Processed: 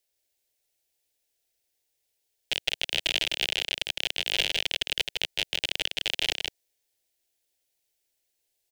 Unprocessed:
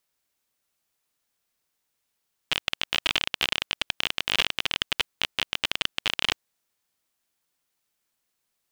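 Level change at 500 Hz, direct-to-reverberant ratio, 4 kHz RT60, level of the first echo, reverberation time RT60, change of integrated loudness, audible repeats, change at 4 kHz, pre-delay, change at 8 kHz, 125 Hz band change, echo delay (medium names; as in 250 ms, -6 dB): +0.5 dB, no reverb, no reverb, -4.5 dB, no reverb, -1.0 dB, 1, -0.5 dB, no reverb, +1.0 dB, -4.0 dB, 159 ms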